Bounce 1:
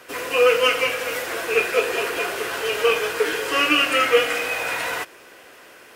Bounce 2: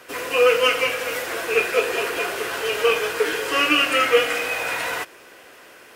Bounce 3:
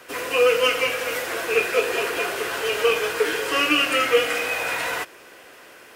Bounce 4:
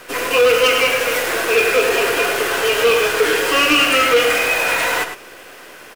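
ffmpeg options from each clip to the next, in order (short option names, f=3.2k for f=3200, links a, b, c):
-af anull
-filter_complex "[0:a]acrossover=split=500|3000[a][b][c];[b]acompressor=threshold=-22dB:ratio=2[d];[a][d][c]amix=inputs=3:normalize=0"
-filter_complex "[0:a]aecho=1:1:104:0.398,asplit=2[a][b];[b]acrusher=bits=5:dc=4:mix=0:aa=0.000001,volume=-5.5dB[c];[a][c]amix=inputs=2:normalize=0,asoftclip=type=tanh:threshold=-12.5dB,volume=4.5dB"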